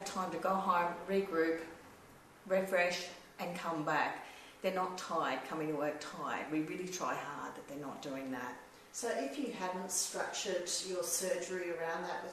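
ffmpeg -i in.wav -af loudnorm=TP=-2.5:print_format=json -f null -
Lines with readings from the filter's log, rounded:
"input_i" : "-37.3",
"input_tp" : "-17.3",
"input_lra" : "3.5",
"input_thresh" : "-47.6",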